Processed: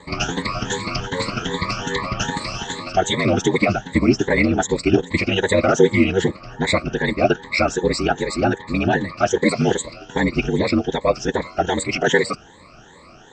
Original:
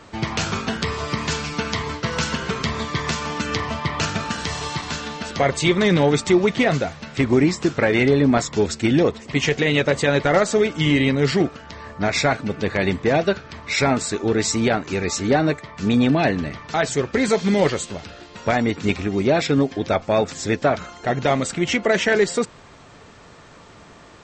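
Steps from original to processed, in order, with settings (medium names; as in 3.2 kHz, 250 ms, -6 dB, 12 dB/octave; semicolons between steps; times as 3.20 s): drifting ripple filter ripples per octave 1, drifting +1.4 Hz, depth 22 dB; ring modulator 46 Hz; time stretch by phase-locked vocoder 0.55×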